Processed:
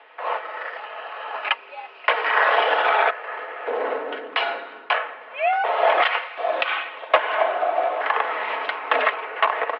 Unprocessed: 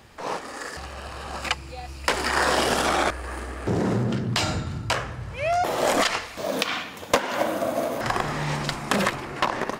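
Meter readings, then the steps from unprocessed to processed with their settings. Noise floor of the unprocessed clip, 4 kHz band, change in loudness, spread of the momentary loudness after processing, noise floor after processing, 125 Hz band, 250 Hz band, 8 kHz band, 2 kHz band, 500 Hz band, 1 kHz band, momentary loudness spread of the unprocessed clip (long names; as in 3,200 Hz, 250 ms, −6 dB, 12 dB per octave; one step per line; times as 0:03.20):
−39 dBFS, −1.0 dB, +3.0 dB, 14 LU, −44 dBFS, below −40 dB, −16.5 dB, below −35 dB, +5.5 dB, +2.5 dB, +5.0 dB, 12 LU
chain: comb filter 4.9 ms, depth 45%
single-sideband voice off tune +64 Hz 420–3,000 Hz
level +4 dB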